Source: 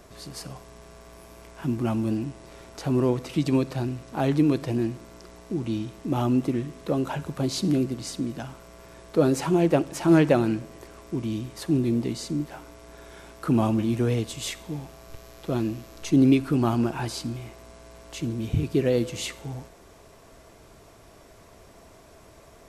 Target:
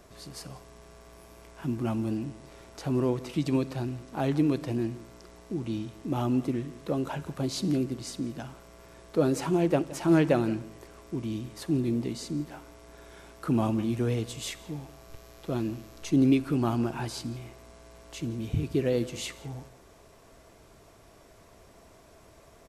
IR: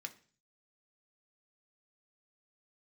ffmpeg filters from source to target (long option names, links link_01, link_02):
-filter_complex "[0:a]asplit=2[link_01][link_02];[link_02]adelay=169.1,volume=-19dB,highshelf=frequency=4000:gain=-3.8[link_03];[link_01][link_03]amix=inputs=2:normalize=0,volume=-4dB"